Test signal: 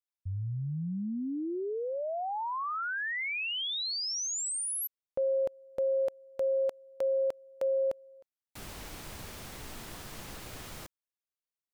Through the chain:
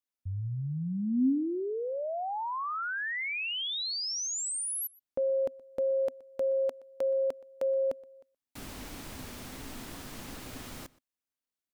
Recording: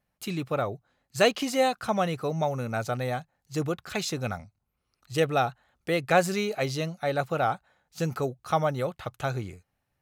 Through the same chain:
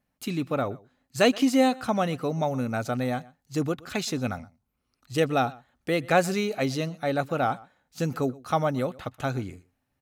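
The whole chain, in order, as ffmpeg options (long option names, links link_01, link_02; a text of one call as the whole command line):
ffmpeg -i in.wav -filter_complex "[0:a]equalizer=frequency=260:width=4:gain=10.5,asplit=2[link_01][link_02];[link_02]adelay=122.4,volume=-22dB,highshelf=frequency=4000:gain=-2.76[link_03];[link_01][link_03]amix=inputs=2:normalize=0" out.wav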